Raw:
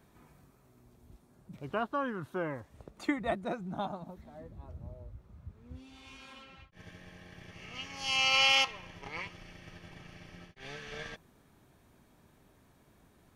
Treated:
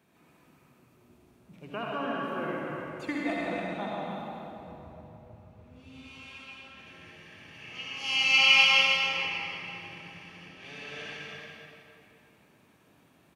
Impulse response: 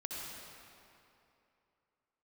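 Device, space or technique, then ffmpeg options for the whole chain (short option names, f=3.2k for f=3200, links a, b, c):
stadium PA: -filter_complex "[0:a]highpass=130,equalizer=f=2.6k:t=o:w=0.54:g=8,aecho=1:1:163.3|291.5:0.316|0.447[a];[1:a]atrim=start_sample=2205[b];[a][b]afir=irnorm=-1:irlink=0"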